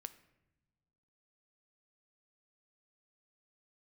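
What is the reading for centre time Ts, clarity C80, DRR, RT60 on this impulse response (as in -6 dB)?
5 ms, 17.5 dB, 12.0 dB, not exponential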